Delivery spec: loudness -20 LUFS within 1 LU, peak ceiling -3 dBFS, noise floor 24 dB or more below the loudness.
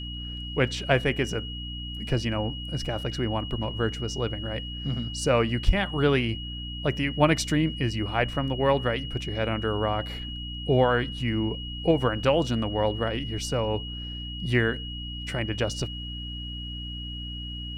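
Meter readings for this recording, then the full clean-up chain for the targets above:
hum 60 Hz; highest harmonic 300 Hz; hum level -34 dBFS; steady tone 2.9 kHz; tone level -37 dBFS; loudness -27.5 LUFS; peak level -6.5 dBFS; loudness target -20.0 LUFS
-> hum notches 60/120/180/240/300 Hz; band-stop 2.9 kHz, Q 30; trim +7.5 dB; peak limiter -3 dBFS

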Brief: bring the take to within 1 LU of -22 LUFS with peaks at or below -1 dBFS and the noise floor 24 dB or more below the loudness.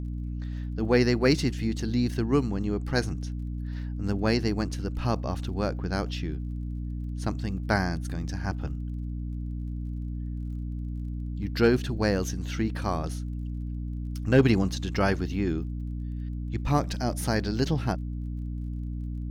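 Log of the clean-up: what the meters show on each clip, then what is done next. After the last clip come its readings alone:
tick rate 30 per s; hum 60 Hz; highest harmonic 300 Hz; hum level -30 dBFS; loudness -29.0 LUFS; peak level -9.5 dBFS; loudness target -22.0 LUFS
-> de-click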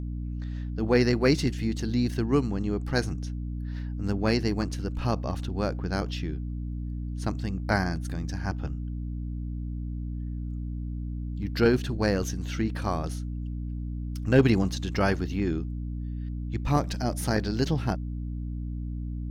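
tick rate 0.67 per s; hum 60 Hz; highest harmonic 300 Hz; hum level -30 dBFS
-> hum notches 60/120/180/240/300 Hz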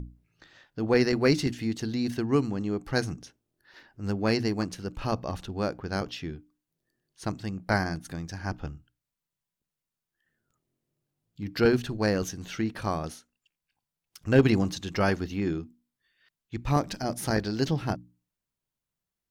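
hum not found; loudness -28.5 LUFS; peak level -8.0 dBFS; loudness target -22.0 LUFS
-> trim +6.5 dB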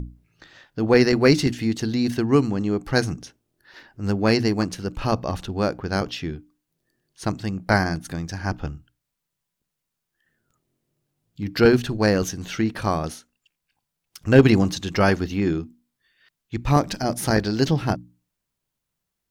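loudness -22.0 LUFS; peak level -1.5 dBFS; noise floor -82 dBFS

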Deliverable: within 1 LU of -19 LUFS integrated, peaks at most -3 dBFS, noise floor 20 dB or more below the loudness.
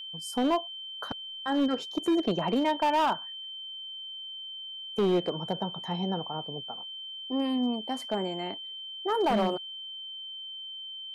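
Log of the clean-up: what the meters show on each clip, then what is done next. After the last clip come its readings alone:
clipped samples 1.3%; clipping level -20.5 dBFS; steady tone 3.1 kHz; tone level -38 dBFS; loudness -31.0 LUFS; peak level -20.5 dBFS; loudness target -19.0 LUFS
-> clip repair -20.5 dBFS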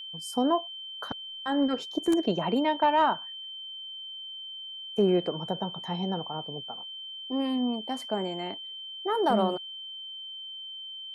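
clipped samples 0.0%; steady tone 3.1 kHz; tone level -38 dBFS
-> band-stop 3.1 kHz, Q 30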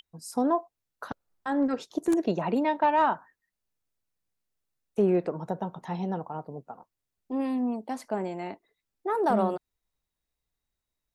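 steady tone not found; loudness -29.0 LUFS; peak level -12.0 dBFS; loudness target -19.0 LUFS
-> trim +10 dB; peak limiter -3 dBFS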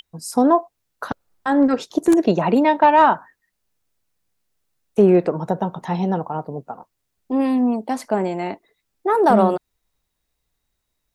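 loudness -19.0 LUFS; peak level -3.0 dBFS; noise floor -76 dBFS

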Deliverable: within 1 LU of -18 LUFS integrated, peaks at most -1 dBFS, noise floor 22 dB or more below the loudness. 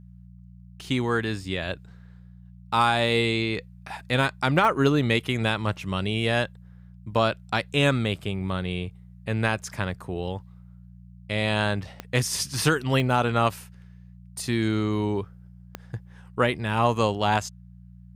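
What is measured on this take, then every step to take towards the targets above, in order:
clicks found 4; hum 60 Hz; highest harmonic 180 Hz; hum level -46 dBFS; loudness -25.5 LUFS; peak level -7.0 dBFS; loudness target -18.0 LUFS
-> de-click; de-hum 60 Hz, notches 3; trim +7.5 dB; peak limiter -1 dBFS

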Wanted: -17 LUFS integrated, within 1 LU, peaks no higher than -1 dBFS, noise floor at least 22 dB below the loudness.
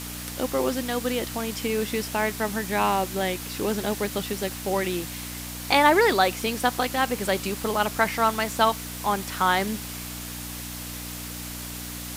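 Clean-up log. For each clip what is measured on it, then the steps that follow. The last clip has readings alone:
hum 60 Hz; highest harmonic 300 Hz; hum level -36 dBFS; noise floor -36 dBFS; noise floor target -48 dBFS; loudness -25.5 LUFS; peak level -5.5 dBFS; loudness target -17.0 LUFS
-> de-hum 60 Hz, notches 5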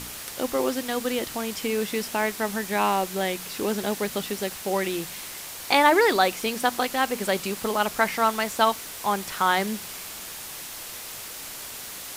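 hum not found; noise floor -38 dBFS; noise floor target -48 dBFS
-> noise reduction 10 dB, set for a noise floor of -38 dBFS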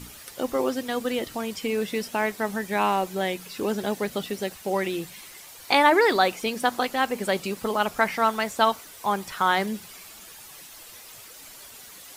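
noise floor -45 dBFS; noise floor target -48 dBFS
-> noise reduction 6 dB, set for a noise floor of -45 dBFS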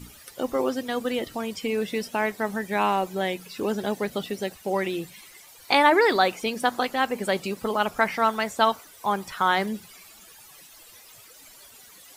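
noise floor -50 dBFS; loudness -25.5 LUFS; peak level -6.0 dBFS; loudness target -17.0 LUFS
-> trim +8.5 dB; peak limiter -1 dBFS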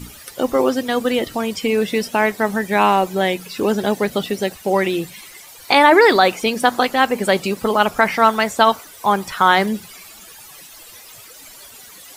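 loudness -17.5 LUFS; peak level -1.0 dBFS; noise floor -41 dBFS

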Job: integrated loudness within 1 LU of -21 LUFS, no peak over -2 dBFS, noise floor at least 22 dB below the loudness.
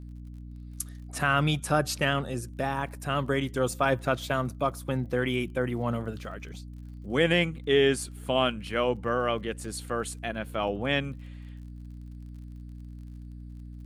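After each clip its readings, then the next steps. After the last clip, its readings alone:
tick rate 43 per s; hum 60 Hz; highest harmonic 300 Hz; hum level -40 dBFS; loudness -28.5 LUFS; peak level -11.0 dBFS; loudness target -21.0 LUFS
-> de-click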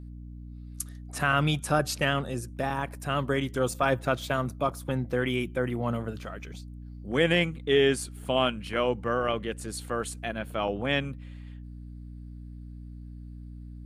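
tick rate 0.072 per s; hum 60 Hz; highest harmonic 300 Hz; hum level -40 dBFS
-> hum notches 60/120/180/240/300 Hz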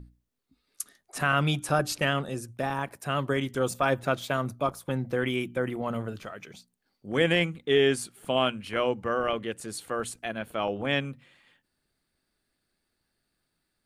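hum not found; loudness -28.5 LUFS; peak level -11.0 dBFS; loudness target -21.0 LUFS
-> trim +7.5 dB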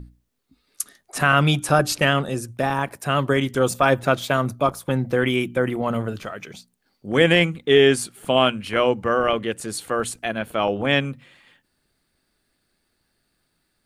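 loudness -21.0 LUFS; peak level -3.5 dBFS; noise floor -72 dBFS

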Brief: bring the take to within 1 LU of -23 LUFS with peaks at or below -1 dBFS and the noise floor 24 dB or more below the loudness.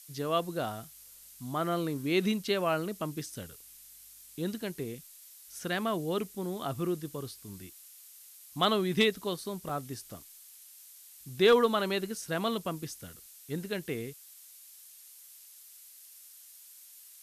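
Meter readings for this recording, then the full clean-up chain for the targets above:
dropouts 1; longest dropout 3.3 ms; noise floor -53 dBFS; noise floor target -56 dBFS; loudness -31.5 LUFS; peak level -14.0 dBFS; loudness target -23.0 LUFS
-> interpolate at 9.69 s, 3.3 ms; noise reduction 6 dB, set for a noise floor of -53 dBFS; trim +8.5 dB

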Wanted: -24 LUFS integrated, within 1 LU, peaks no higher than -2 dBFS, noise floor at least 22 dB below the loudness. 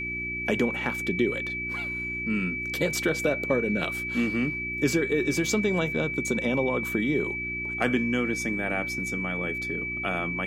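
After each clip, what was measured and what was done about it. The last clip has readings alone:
hum 60 Hz; highest harmonic 360 Hz; hum level -37 dBFS; steady tone 2.3 kHz; tone level -30 dBFS; loudness -27.0 LUFS; peak level -10.0 dBFS; loudness target -24.0 LUFS
-> de-hum 60 Hz, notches 6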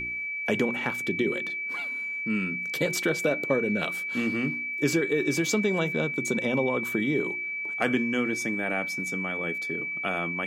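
hum not found; steady tone 2.3 kHz; tone level -30 dBFS
-> band-stop 2.3 kHz, Q 30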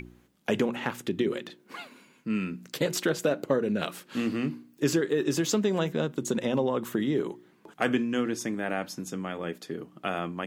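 steady tone not found; loudness -29.5 LUFS; peak level -10.0 dBFS; loudness target -24.0 LUFS
-> trim +5.5 dB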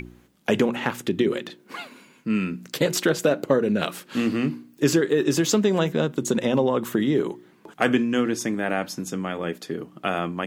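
loudness -24.0 LUFS; peak level -4.5 dBFS; noise floor -56 dBFS

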